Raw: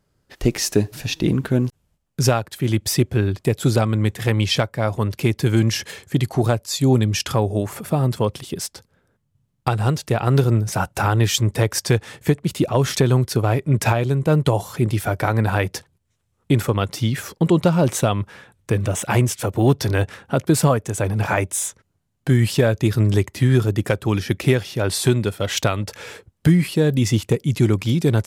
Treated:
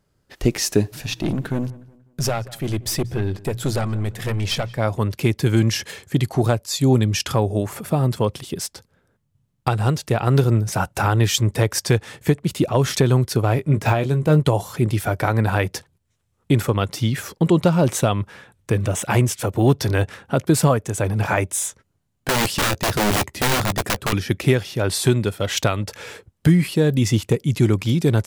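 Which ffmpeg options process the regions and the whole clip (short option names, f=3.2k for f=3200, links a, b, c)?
-filter_complex "[0:a]asettb=1/sr,asplit=3[a][b][c];[a]atrim=end=0.994[d];[b]atrim=start=0.99:end=4.78,asetpts=PTS-STARTPTS,afade=t=in:d=0.004:c=qsin,afade=t=out:st=3.786:d=0.004:c=qsin,bandreject=f=60:t=h:w=6,bandreject=f=120:t=h:w=6,bandreject=f=180:t=h:w=6,aeval=exprs='(tanh(6.31*val(0)+0.35)-tanh(0.35))/6.31':c=same,asplit=2[e][f];[f]adelay=182,lowpass=f=2.6k:p=1,volume=-20dB,asplit=2[g][h];[h]adelay=182,lowpass=f=2.6k:p=1,volume=0.38,asplit=2[i][j];[j]adelay=182,lowpass=f=2.6k:p=1,volume=0.38[k];[e][g][i][k]amix=inputs=4:normalize=0,atrim=end_sample=167139[l];[c]atrim=start=4.776[m];[d][l]acrossfade=d=0.004:c1=hsin:c2=qsin[n];[n][m]acrossfade=d=0.004:c1=qsin:c2=hsin,asettb=1/sr,asplit=3[o][p][q];[o]atrim=end=13.554[r];[p]atrim=start=13.55:end=14.4,asetpts=PTS-STARTPTS,afade=t=in:d=0.004:c=qsin,afade=t=out:st=0.846:d=0.004:c=qsin,deesser=0.65,asplit=2[s][t];[t]adelay=20,volume=-10dB[u];[s][u]amix=inputs=2:normalize=0,atrim=end_sample=37485[v];[q]atrim=start=14.396[w];[r][v]acrossfade=d=0.004:c1=hsin:c2=qsin[x];[x][w]acrossfade=d=0.004:c1=qsin:c2=hsin,asettb=1/sr,asplit=3[y][z][aa];[y]atrim=end=21.674[ab];[z]atrim=start=21.67:end=24.13,asetpts=PTS-STARTPTS,afade=t=in:d=0.004:c=qsin,afade=t=out:st=2.456:d=0.004:c=qsin,aeval=exprs='(mod(5.31*val(0)+1,2)-1)/5.31':c=same,asplit=2[ac][ad];[ad]adelay=15,volume=-14dB[ae];[ac][ae]amix=inputs=2:normalize=0,atrim=end_sample=108486[af];[aa]atrim=start=24.126[ag];[ab][af]acrossfade=d=0.004:c1=hsin:c2=qsin[ah];[ah][ag]acrossfade=d=0.004:c1=qsin:c2=hsin"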